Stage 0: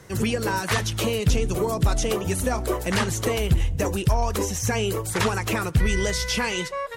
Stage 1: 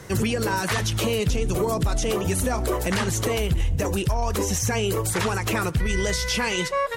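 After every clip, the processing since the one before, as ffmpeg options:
ffmpeg -i in.wav -af "alimiter=limit=-21dB:level=0:latency=1:release=115,volume=6dB" out.wav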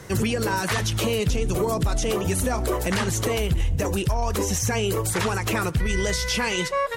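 ffmpeg -i in.wav -af anull out.wav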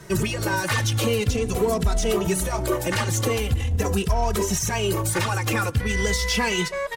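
ffmpeg -i in.wav -filter_complex "[0:a]asplit=2[link_01][link_02];[link_02]acrusher=bits=3:mix=0:aa=0.5,volume=-11dB[link_03];[link_01][link_03]amix=inputs=2:normalize=0,asplit=2[link_04][link_05];[link_05]adelay=2.7,afreqshift=-0.44[link_06];[link_04][link_06]amix=inputs=2:normalize=1,volume=1.5dB" out.wav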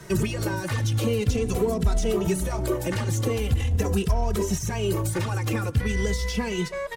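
ffmpeg -i in.wav -filter_complex "[0:a]acrossover=split=490[link_01][link_02];[link_02]acompressor=threshold=-32dB:ratio=6[link_03];[link_01][link_03]amix=inputs=2:normalize=0" out.wav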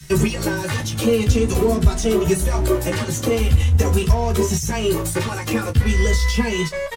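ffmpeg -i in.wav -filter_complex "[0:a]acrossover=split=190|2200[link_01][link_02][link_03];[link_02]aeval=exprs='sgn(val(0))*max(abs(val(0))-0.00708,0)':channel_layout=same[link_04];[link_01][link_04][link_03]amix=inputs=3:normalize=0,aecho=1:1:13|32:0.668|0.316,volume=5.5dB" out.wav

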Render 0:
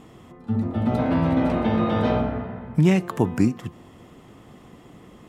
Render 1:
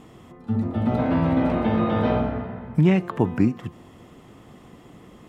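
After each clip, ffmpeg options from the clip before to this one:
ffmpeg -i in.wav -filter_complex "[0:a]acrossover=split=3700[link_01][link_02];[link_02]acompressor=threshold=-57dB:ratio=4:attack=1:release=60[link_03];[link_01][link_03]amix=inputs=2:normalize=0" out.wav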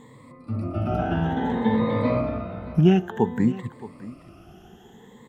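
ffmpeg -i in.wav -af "afftfilt=real='re*pow(10,18/40*sin(2*PI*(1*log(max(b,1)*sr/1024/100)/log(2)-(0.57)*(pts-256)/sr)))':imag='im*pow(10,18/40*sin(2*PI*(1*log(max(b,1)*sr/1024/100)/log(2)-(0.57)*(pts-256)/sr)))':win_size=1024:overlap=0.75,aecho=1:1:622:0.133,volume=-4.5dB" out.wav

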